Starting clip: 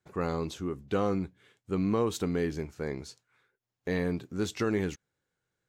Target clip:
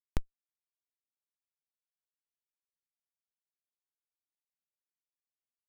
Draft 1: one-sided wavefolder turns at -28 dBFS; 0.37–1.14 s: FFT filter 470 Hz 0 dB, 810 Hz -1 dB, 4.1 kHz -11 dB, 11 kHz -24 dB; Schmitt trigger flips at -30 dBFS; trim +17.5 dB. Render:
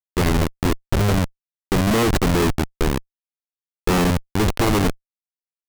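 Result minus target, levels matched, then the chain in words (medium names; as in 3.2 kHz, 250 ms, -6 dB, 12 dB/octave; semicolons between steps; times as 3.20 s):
one-sided wavefolder: distortion -11 dB
one-sided wavefolder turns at -36 dBFS; 0.37–1.14 s: FFT filter 470 Hz 0 dB, 810 Hz -1 dB, 4.1 kHz -11 dB, 11 kHz -24 dB; Schmitt trigger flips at -30 dBFS; trim +17.5 dB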